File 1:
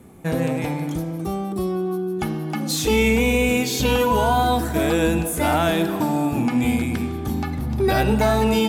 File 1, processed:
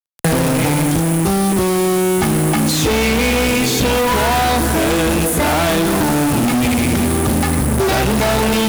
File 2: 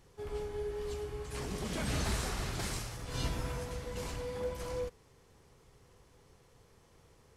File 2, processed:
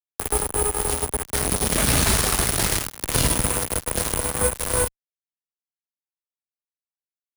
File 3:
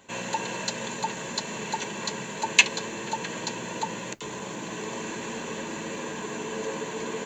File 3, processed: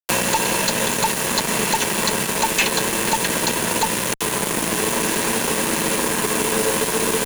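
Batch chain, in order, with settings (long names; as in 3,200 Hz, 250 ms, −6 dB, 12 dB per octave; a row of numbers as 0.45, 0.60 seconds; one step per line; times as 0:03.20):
steady tone 9,900 Hz −39 dBFS
fuzz pedal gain 41 dB, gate −32 dBFS
multiband upward and downward compressor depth 70%
normalise the peak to −3 dBFS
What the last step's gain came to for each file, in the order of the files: −0.5, +3.0, 0.0 decibels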